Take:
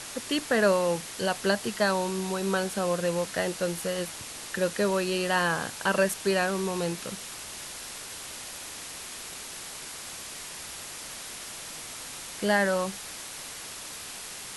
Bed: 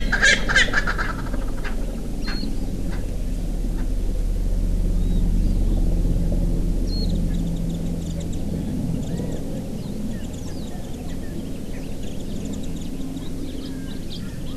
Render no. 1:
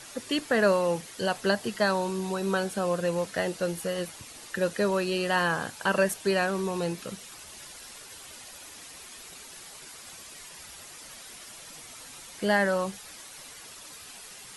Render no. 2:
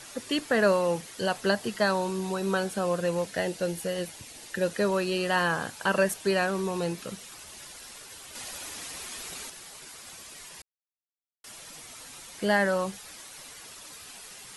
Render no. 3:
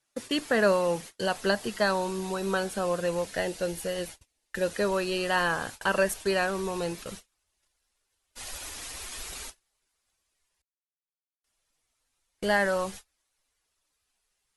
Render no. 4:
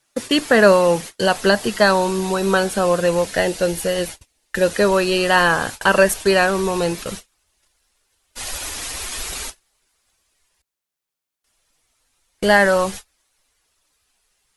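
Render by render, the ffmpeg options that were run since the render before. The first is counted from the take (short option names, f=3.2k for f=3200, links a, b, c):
-af "afftdn=nr=9:nf=-41"
-filter_complex "[0:a]asettb=1/sr,asplit=3[a][b][c];[a]atrim=end=3.224[d];[b]atrim=start=3.22:end=4.7,asetpts=PTS-STARTPTS,afade=t=in:d=0.004:c=qsin,afade=t=out:st=1.476:d=0.004:c=qsin,equalizer=f=1.2k:w=3.5:g=-7[e];[c]atrim=start=4.696[f];[d][e]acrossfade=d=0.004:c1=hsin:c2=qsin[g];[g][f]acrossfade=d=0.004:c1=qsin:c2=hsin,asettb=1/sr,asplit=3[h][i][j];[h]atrim=end=8.354[k];[i]atrim=start=8.35:end=9.5,asetpts=PTS-STARTPTS,afade=t=in:d=0.004:c=qsin,afade=t=out:st=1.146:d=0.004:c=qsin,acontrast=54[l];[j]atrim=start=9.496[m];[k][l]acrossfade=d=0.004:c1=hsin:c2=qsin[n];[n][m]acrossfade=d=0.004:c1=qsin:c2=hsin,asplit=3[o][p][q];[o]atrim=end=10.62,asetpts=PTS-STARTPTS,afade=t=out:st=10.616:d=0.004:c=hsin[r];[p]atrim=start=10.62:end=11.44,asetpts=PTS-STARTPTS,volume=0[s];[q]atrim=start=11.44,asetpts=PTS-STARTPTS,afade=t=in:d=0.004:c=hsin[t];[r][s][t]concat=n=3:v=0:a=1"
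-af "agate=range=-33dB:threshold=-40dB:ratio=16:detection=peak,asubboost=boost=7.5:cutoff=55"
-af "volume=11dB,alimiter=limit=-1dB:level=0:latency=1"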